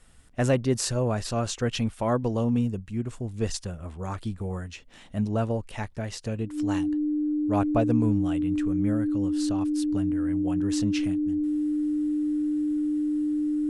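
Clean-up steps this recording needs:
notch filter 300 Hz, Q 30

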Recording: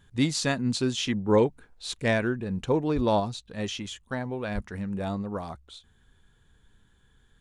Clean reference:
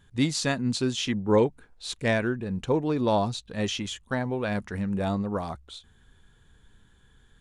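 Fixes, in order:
high-pass at the plosives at 0:02.95/0:04.54
level 0 dB, from 0:03.20 +3.5 dB

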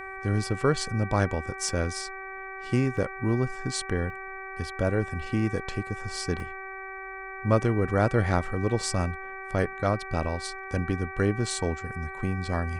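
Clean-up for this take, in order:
hum removal 384 Hz, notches 6
repair the gap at 0:01.69/0:02.97/0:04.10/0:06.40, 1.3 ms

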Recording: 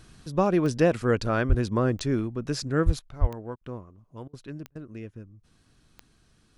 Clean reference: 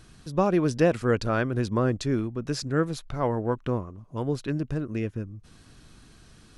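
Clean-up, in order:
click removal
0:01.48–0:01.60: high-pass filter 140 Hz 24 dB per octave
0:02.85–0:02.97: high-pass filter 140 Hz 24 dB per octave
0:03.20–0:03.32: high-pass filter 140 Hz 24 dB per octave
repair the gap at 0:03.56/0:04.28/0:04.70, 52 ms
level 0 dB, from 0:02.99 +10 dB

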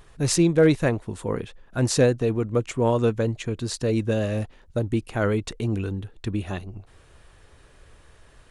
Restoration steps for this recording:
clipped peaks rebuilt −9.5 dBFS

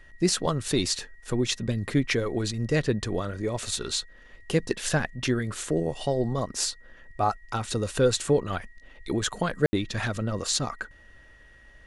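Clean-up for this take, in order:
notch filter 1,900 Hz, Q 30
ambience match 0:09.66–0:09.73

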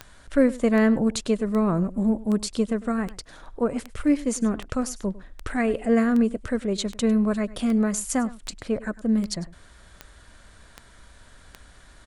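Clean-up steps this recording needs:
click removal
echo removal 101 ms −19 dB

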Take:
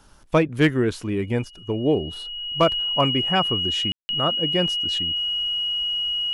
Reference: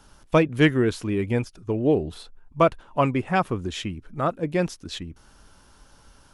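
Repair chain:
clipped peaks rebuilt −9 dBFS
notch filter 2,900 Hz, Q 30
ambience match 0:03.92–0:04.09

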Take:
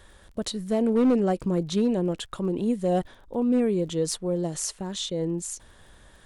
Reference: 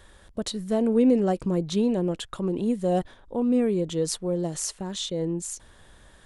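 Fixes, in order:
clipped peaks rebuilt −16 dBFS
click removal

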